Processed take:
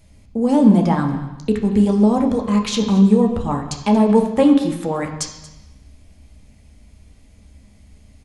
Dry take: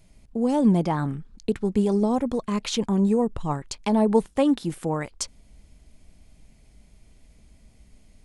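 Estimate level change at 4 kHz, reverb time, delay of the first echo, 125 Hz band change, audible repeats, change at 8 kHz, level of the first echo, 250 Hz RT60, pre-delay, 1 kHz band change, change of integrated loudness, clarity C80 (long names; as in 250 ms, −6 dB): +5.0 dB, 1.0 s, 232 ms, +7.0 dB, 1, +4.5 dB, −18.0 dB, 1.0 s, 3 ms, +6.0 dB, +7.5 dB, 9.0 dB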